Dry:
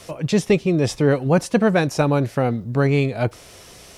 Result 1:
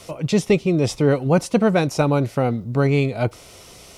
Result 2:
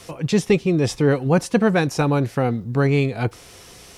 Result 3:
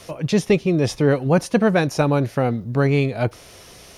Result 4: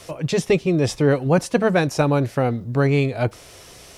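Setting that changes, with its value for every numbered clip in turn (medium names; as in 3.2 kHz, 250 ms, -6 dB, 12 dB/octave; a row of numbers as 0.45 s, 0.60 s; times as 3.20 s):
band-stop, frequency: 1.7 kHz, 610 Hz, 7.7 kHz, 210 Hz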